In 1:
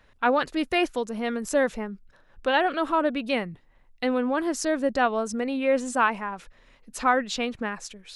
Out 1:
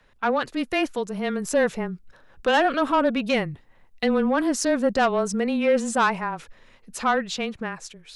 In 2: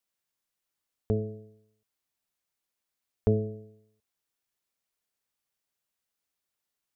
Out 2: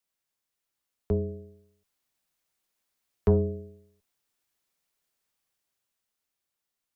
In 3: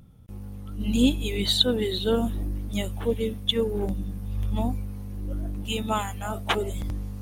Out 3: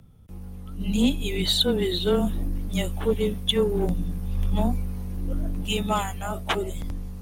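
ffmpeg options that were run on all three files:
-af "dynaudnorm=framelen=130:gausssize=21:maxgain=5dB,asoftclip=type=tanh:threshold=-12dB,afreqshift=-17"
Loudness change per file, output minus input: +2.0, +2.5, +1.0 LU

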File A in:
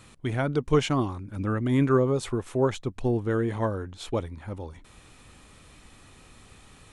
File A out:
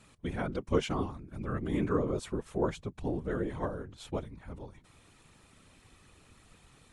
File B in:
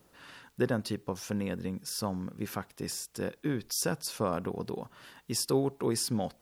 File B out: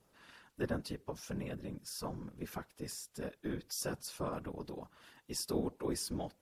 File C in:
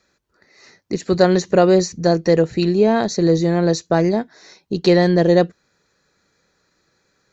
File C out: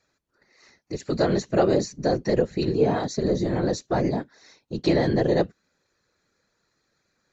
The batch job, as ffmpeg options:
-af "afftfilt=real='hypot(re,im)*cos(2*PI*random(0))':imag='hypot(re,im)*sin(2*PI*random(1))':win_size=512:overlap=0.75,volume=-1.5dB" -ar 32000 -c:a aac -b:a 96k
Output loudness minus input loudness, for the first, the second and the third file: −7.5, −7.5, −7.0 LU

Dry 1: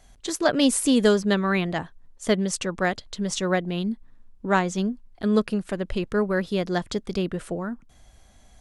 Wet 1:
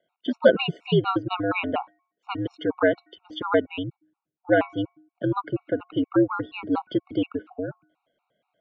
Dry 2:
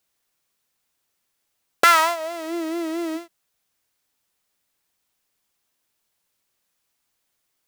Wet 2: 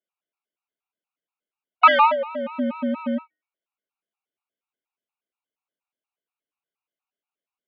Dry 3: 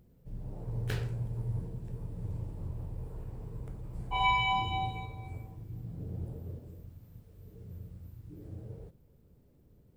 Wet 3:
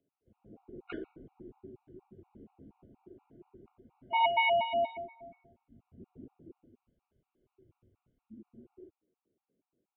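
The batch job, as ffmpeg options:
-af "afftdn=noise_reduction=15:noise_floor=-40,equalizer=frequency=1900:width_type=o:width=0.26:gain=-13,bandreject=frequency=390.5:width_type=h:width=4,bandreject=frequency=781:width_type=h:width=4,bandreject=frequency=1171.5:width_type=h:width=4,bandreject=frequency=1562:width_type=h:width=4,bandreject=frequency=1952.5:width_type=h:width=4,bandreject=frequency=2343:width_type=h:width=4,highpass=frequency=310:width_type=q:width=0.5412,highpass=frequency=310:width_type=q:width=1.307,lowpass=frequency=3100:width_type=q:width=0.5176,lowpass=frequency=3100:width_type=q:width=0.7071,lowpass=frequency=3100:width_type=q:width=1.932,afreqshift=-81,afftfilt=real='re*gt(sin(2*PI*4.2*pts/sr)*(1-2*mod(floor(b*sr/1024/730),2)),0)':imag='im*gt(sin(2*PI*4.2*pts/sr)*(1-2*mod(floor(b*sr/1024/730),2)),0)':win_size=1024:overlap=0.75,volume=7dB"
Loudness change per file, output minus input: −1.0, +1.0, +5.5 LU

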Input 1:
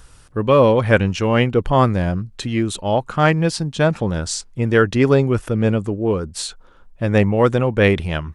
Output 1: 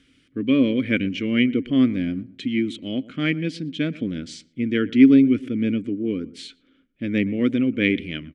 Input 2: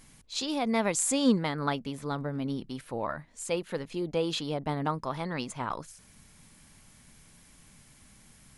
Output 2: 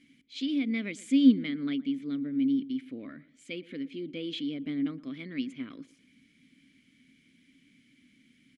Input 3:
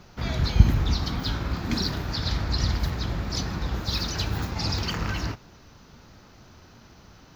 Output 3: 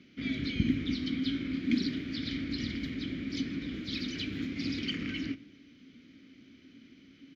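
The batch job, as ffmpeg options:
-filter_complex "[0:a]asplit=3[link_01][link_02][link_03];[link_01]bandpass=frequency=270:width_type=q:width=8,volume=0dB[link_04];[link_02]bandpass=frequency=2290:width_type=q:width=8,volume=-6dB[link_05];[link_03]bandpass=frequency=3010:width_type=q:width=8,volume=-9dB[link_06];[link_04][link_05][link_06]amix=inputs=3:normalize=0,asplit=2[link_07][link_08];[link_08]adelay=117,lowpass=frequency=1300:poles=1,volume=-18.5dB,asplit=2[link_09][link_10];[link_10]adelay=117,lowpass=frequency=1300:poles=1,volume=0.34,asplit=2[link_11][link_12];[link_12]adelay=117,lowpass=frequency=1300:poles=1,volume=0.34[link_13];[link_07][link_09][link_11][link_13]amix=inputs=4:normalize=0,volume=8.5dB"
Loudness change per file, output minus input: −3.5, +1.0, −7.0 LU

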